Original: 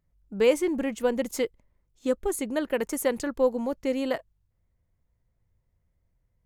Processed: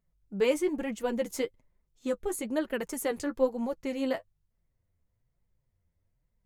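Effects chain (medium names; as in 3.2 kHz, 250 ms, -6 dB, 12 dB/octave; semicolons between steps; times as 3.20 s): flange 1.1 Hz, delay 4.2 ms, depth 7.7 ms, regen +24%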